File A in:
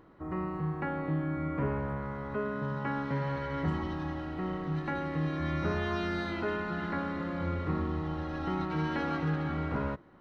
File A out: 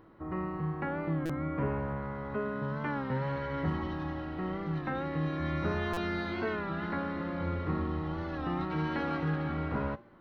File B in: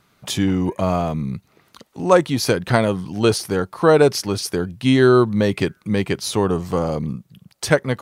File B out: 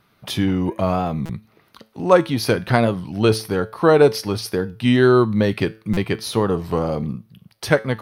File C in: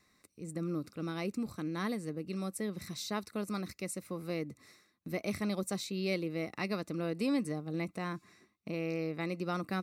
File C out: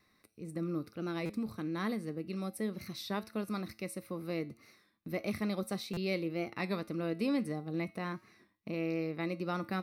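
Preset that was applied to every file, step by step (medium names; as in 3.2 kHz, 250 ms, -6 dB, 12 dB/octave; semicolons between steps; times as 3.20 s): peaking EQ 7.3 kHz -15 dB 0.43 oct; feedback comb 110 Hz, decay 0.36 s, harmonics all, mix 50%; buffer glitch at 1.26/5.93 s, samples 256, times 6; warped record 33 1/3 rpm, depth 100 cents; trim +4.5 dB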